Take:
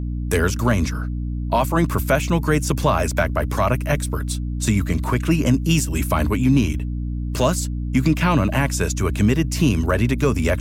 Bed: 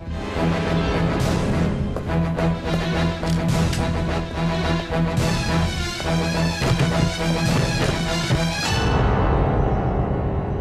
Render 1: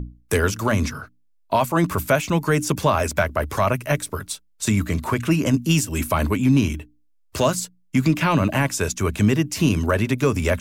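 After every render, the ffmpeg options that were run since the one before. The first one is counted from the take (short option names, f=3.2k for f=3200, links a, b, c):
-af "bandreject=f=60:t=h:w=6,bandreject=f=120:t=h:w=6,bandreject=f=180:t=h:w=6,bandreject=f=240:t=h:w=6,bandreject=f=300:t=h:w=6"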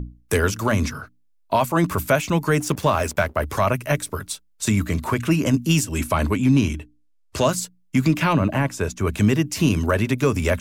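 -filter_complex "[0:a]asettb=1/sr,asplit=3[a][b][c];[a]atrim=end=2.604[d];[b]atrim=start=2.6:end=3.36,asetpts=PTS-STARTPTS,afade=t=in:d=0.004:c=qsin,afade=t=out:st=0.756:d=0.004:c=qsin,aeval=exprs='sgn(val(0))*max(abs(val(0))-0.0112,0)':c=same[e];[c]atrim=start=3.356[f];[d][e]acrossfade=d=0.004:c1=hsin:c2=qsin[g];[g][f]acrossfade=d=0.004:c1=qsin:c2=hsin,asettb=1/sr,asplit=3[h][i][j];[h]atrim=end=5.844[k];[i]atrim=start=5.84:end=7.49,asetpts=PTS-STARTPTS,afade=t=in:d=0.004:c=qsin,afade=t=out:st=1.646:d=0.004:c=qsin,lowpass=11k[l];[j]atrim=start=7.486[m];[k][l]acrossfade=d=0.004:c1=hsin:c2=qsin[n];[n][m]acrossfade=d=0.004:c1=qsin:c2=hsin,asettb=1/sr,asplit=3[o][p][q];[o]atrim=end=8.334[r];[p]atrim=start=8.33:end=9.07,asetpts=PTS-STARTPTS,afade=t=in:d=0.004:c=qsin,afade=t=out:st=0.736:d=0.004:c=qsin,highshelf=f=2.5k:g=-9.5[s];[q]atrim=start=9.066[t];[r][s]acrossfade=d=0.004:c1=hsin:c2=qsin[u];[u][t]acrossfade=d=0.004:c1=qsin:c2=hsin"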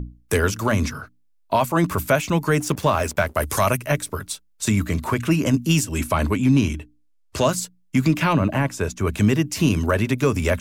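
-filter_complex "[0:a]asettb=1/sr,asplit=3[a][b][c];[a]atrim=end=3.274[d];[b]atrim=start=3.27:end=3.77,asetpts=PTS-STARTPTS,afade=t=in:d=0.004:c=qsin,afade=t=out:st=0.496:d=0.004:c=qsin,equalizer=f=9.9k:w=0.47:g=13.5[e];[c]atrim=start=3.766[f];[d][e]acrossfade=d=0.004:c1=hsin:c2=qsin[g];[g][f]acrossfade=d=0.004:c1=qsin:c2=hsin"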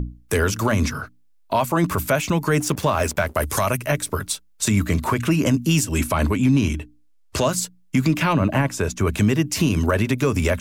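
-filter_complex "[0:a]asplit=2[a][b];[b]acompressor=threshold=-26dB:ratio=6,volume=-2dB[c];[a][c]amix=inputs=2:normalize=0,alimiter=limit=-9.5dB:level=0:latency=1:release=79"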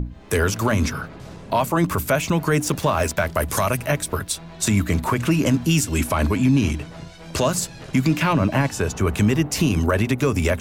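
-filter_complex "[1:a]volume=-18dB[a];[0:a][a]amix=inputs=2:normalize=0"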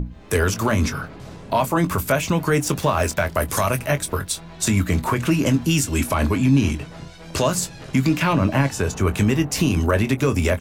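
-filter_complex "[0:a]asplit=2[a][b];[b]adelay=22,volume=-11dB[c];[a][c]amix=inputs=2:normalize=0"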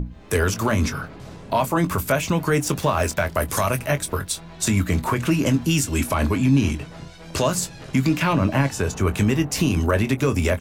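-af "volume=-1dB"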